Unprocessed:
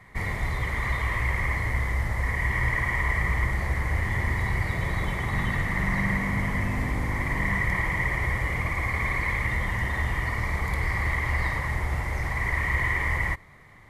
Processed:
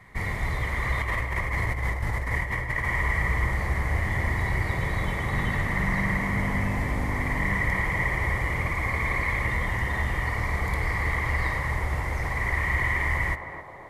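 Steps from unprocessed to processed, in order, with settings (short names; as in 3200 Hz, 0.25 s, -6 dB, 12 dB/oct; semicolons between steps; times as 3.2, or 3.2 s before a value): 0.97–2.86 negative-ratio compressor -27 dBFS, ratio -0.5; on a send: narrowing echo 0.265 s, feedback 75%, band-pass 560 Hz, level -5 dB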